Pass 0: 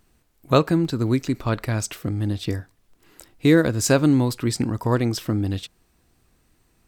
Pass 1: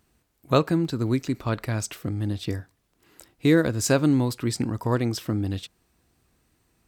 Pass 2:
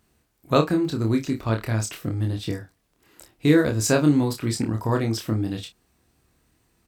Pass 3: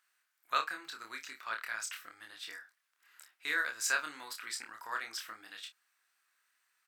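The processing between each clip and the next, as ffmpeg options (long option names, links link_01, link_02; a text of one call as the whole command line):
ffmpeg -i in.wav -af "highpass=43,volume=-3dB" out.wav
ffmpeg -i in.wav -af "aecho=1:1:27|56:0.631|0.178" out.wav
ffmpeg -i in.wav -af "highpass=frequency=1500:width_type=q:width=2.4,volume=-8.5dB" out.wav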